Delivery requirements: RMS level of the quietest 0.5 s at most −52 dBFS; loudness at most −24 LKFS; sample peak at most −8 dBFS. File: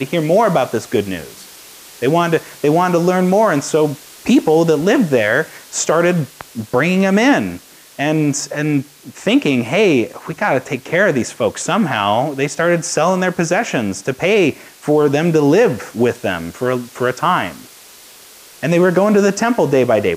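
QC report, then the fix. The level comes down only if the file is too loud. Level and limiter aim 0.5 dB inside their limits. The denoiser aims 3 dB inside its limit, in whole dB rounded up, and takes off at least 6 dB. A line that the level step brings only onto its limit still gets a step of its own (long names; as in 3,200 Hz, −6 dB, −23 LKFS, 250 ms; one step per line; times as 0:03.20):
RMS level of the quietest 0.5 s −41 dBFS: out of spec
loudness −15.5 LKFS: out of spec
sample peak −3.0 dBFS: out of spec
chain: broadband denoise 6 dB, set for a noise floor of −41 dBFS
level −9 dB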